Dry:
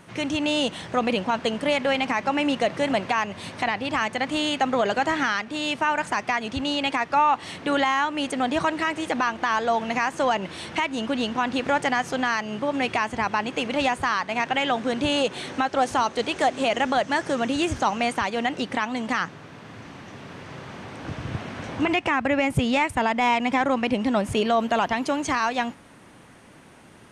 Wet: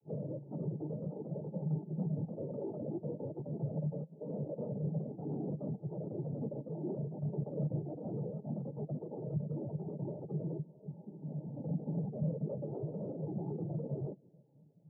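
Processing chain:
compressing power law on the bin magnitudes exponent 0.17
in parallel at +2 dB: output level in coarse steps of 18 dB
on the sum: inverse Chebyshev band-stop filter 1,600–5,100 Hz, stop band 80 dB
change of speed 1.82×
cochlear-implant simulation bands 12
parametric band 150 Hz +9.5 dB 0.45 octaves
downward compressor 6 to 1, threshold −38 dBFS, peak gain reduction 14.5 dB
brickwall limiter −38 dBFS, peak gain reduction 10 dB
echo through a band-pass that steps 147 ms, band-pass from 270 Hz, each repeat 0.7 octaves, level −11.5 dB
every bin expanded away from the loudest bin 2.5 to 1
level +11 dB

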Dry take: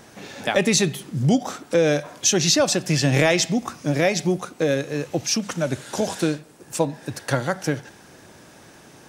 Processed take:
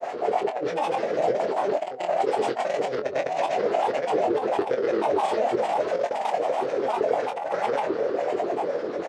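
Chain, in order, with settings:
compressor on every frequency bin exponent 0.4
parametric band 570 Hz +14.5 dB 1.3 octaves
auto-filter band-pass sine 9.4 Hz 440–2,500 Hz
on a send: delay that swaps between a low-pass and a high-pass 115 ms, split 1,300 Hz, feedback 77%, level −8 dB
on the sum: harmonic and percussive parts rebalanced percussive −18 dB
compressor whose output falls as the input rises −20 dBFS, ratio −0.5
granular cloud, pitch spread up and down by 7 semitones
double-tracking delay 23 ms −8 dB
level −3.5 dB

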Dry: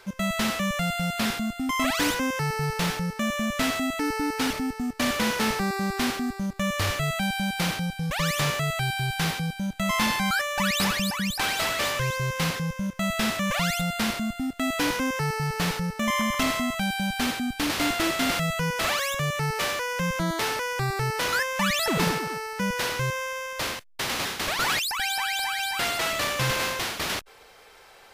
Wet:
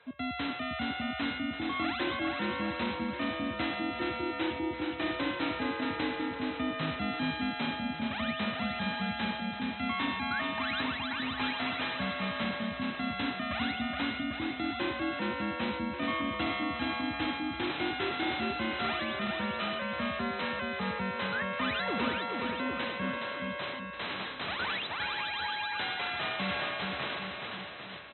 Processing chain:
frequency shifter +61 Hz
linear-phase brick-wall low-pass 4,100 Hz
bouncing-ball delay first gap 420 ms, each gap 0.9×, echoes 5
level −8.5 dB

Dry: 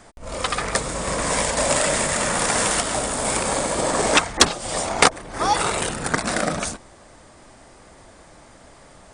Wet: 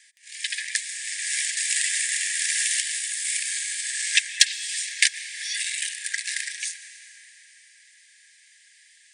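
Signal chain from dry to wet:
pitch vibrato 2.4 Hz 11 cents
linear-phase brick-wall high-pass 1,600 Hz
dense smooth reverb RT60 4.9 s, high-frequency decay 0.65×, pre-delay 105 ms, DRR 11.5 dB
level −1 dB

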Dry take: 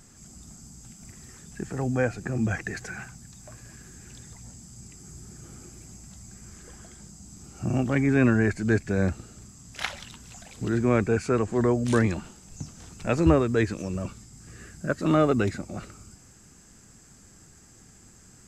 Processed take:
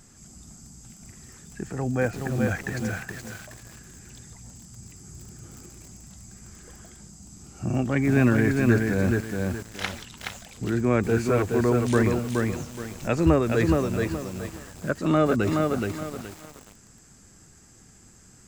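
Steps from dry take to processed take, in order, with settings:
0:04.72–0:05.49: parametric band 100 Hz +7.5 dB 0.3 octaves
feedback echo at a low word length 422 ms, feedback 35%, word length 7 bits, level −3 dB

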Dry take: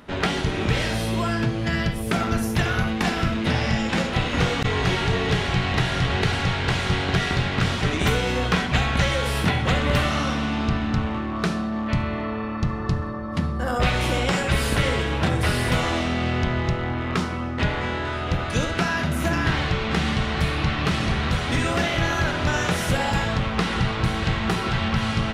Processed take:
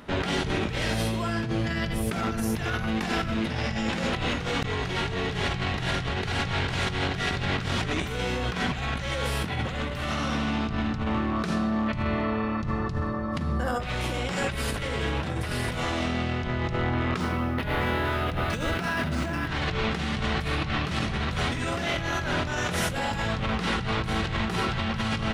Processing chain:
compressor whose output falls as the input rises −26 dBFS, ratio −1
0:17.20–0:19.48: linearly interpolated sample-rate reduction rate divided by 3×
level −2 dB

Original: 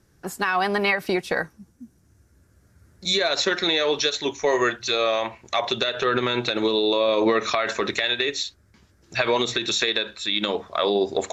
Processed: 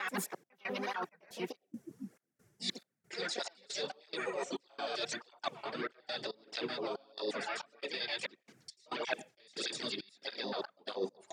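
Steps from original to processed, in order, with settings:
slices reordered back to front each 87 ms, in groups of 6
on a send at −17 dB: formant filter e + convolution reverb RT60 0.40 s, pre-delay 89 ms
on the sum: pitch-shifted copies added −12 semitones −17 dB, +4 semitones −2 dB, +5 semitones −8 dB
high-pass filter 150 Hz 24 dB per octave
reversed playback
downward compressor 16 to 1, threshold −30 dBFS, peak gain reduction 17.5 dB
reversed playback
gate pattern "xx.xx.x.xx." 69 BPM −24 dB
through-zero flanger with one copy inverted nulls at 1.6 Hz, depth 4.4 ms
level −1 dB

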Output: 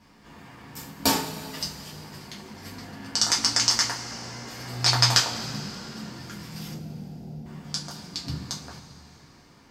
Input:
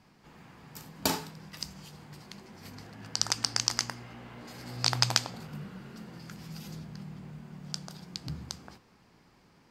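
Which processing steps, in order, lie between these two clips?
0:06.73–0:07.46: Butterworth low-pass 860 Hz 96 dB per octave
coupled-rooms reverb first 0.25 s, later 3.1 s, from −20 dB, DRR −4.5 dB
level +1.5 dB

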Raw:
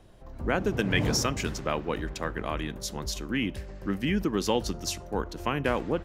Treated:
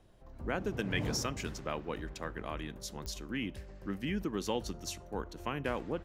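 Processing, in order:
0:04.20–0:05.62: notch filter 5,000 Hz, Q 14
digital clicks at 0:03.06, −20 dBFS
level −8 dB

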